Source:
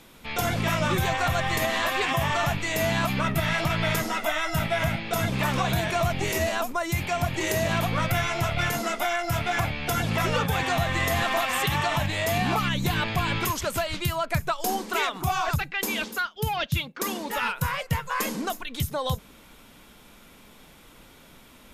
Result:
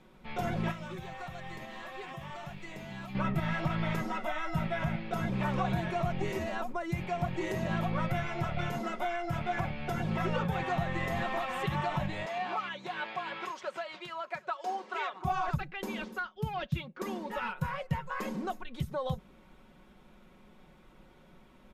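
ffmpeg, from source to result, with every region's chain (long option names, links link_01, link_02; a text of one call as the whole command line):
ffmpeg -i in.wav -filter_complex "[0:a]asettb=1/sr,asplit=3[link_01][link_02][link_03];[link_01]atrim=end=0.714[link_04];[link_02]atrim=start=0.71:end=3.15,asetpts=PTS-STARTPTS,afade=type=in:duration=0.004:curve=qsin,afade=type=out:start_time=2.436:duration=0.004:curve=qsin,acrossover=split=2400|6700[link_05][link_06][link_07];[link_05]acompressor=threshold=-36dB:ratio=4[link_08];[link_06]acompressor=threshold=-40dB:ratio=4[link_09];[link_07]acompressor=threshold=-46dB:ratio=4[link_10];[link_08][link_09][link_10]amix=inputs=3:normalize=0,acrusher=bits=7:mix=0:aa=0.5[link_11];[link_03]atrim=start=3.146[link_12];[link_04][link_11]acrossfade=duration=0.004:curve1=hsin:curve2=qsin[link_13];[link_13][link_12]acrossfade=duration=0.004:curve1=qsin:curve2=hsin,asettb=1/sr,asplit=3[link_14][link_15][link_16];[link_14]atrim=end=12.264[link_17];[link_15]atrim=start=12.26:end=15.25,asetpts=PTS-STARTPTS,afade=type=in:duration=0.004:curve=qsin,afade=type=out:start_time=2.986:duration=0.004:curve=qsin,highpass=570,lowpass=6400,aecho=1:1:778:0.0668,atrim=end_sample=131859[link_18];[link_16]atrim=start=15.246[link_19];[link_17][link_18]acrossfade=duration=0.004:curve1=hsin:curve2=qsin[link_20];[link_20][link_19]acrossfade=duration=0.004:curve1=qsin:curve2=hsin,lowpass=frequency=1100:poles=1,aecho=1:1:5.4:0.54,volume=-5.5dB" out.wav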